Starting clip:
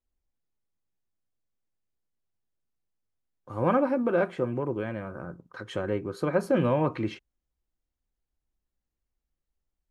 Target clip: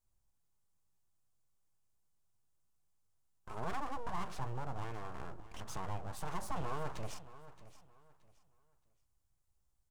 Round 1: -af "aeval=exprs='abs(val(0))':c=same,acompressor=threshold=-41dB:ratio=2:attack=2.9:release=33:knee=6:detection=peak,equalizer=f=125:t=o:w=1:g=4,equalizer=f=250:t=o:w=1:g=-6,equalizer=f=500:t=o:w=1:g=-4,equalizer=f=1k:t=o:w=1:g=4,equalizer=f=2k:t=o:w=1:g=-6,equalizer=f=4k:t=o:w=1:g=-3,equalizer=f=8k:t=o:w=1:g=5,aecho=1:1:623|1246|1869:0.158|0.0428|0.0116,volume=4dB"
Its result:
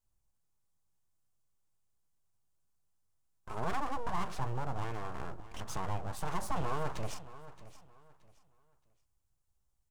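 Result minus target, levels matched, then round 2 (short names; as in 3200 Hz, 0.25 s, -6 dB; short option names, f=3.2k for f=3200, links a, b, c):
compressor: peak gain reduction -4.5 dB
-af "aeval=exprs='abs(val(0))':c=same,acompressor=threshold=-50dB:ratio=2:attack=2.9:release=33:knee=6:detection=peak,equalizer=f=125:t=o:w=1:g=4,equalizer=f=250:t=o:w=1:g=-6,equalizer=f=500:t=o:w=1:g=-4,equalizer=f=1k:t=o:w=1:g=4,equalizer=f=2k:t=o:w=1:g=-6,equalizer=f=4k:t=o:w=1:g=-3,equalizer=f=8k:t=o:w=1:g=5,aecho=1:1:623|1246|1869:0.158|0.0428|0.0116,volume=4dB"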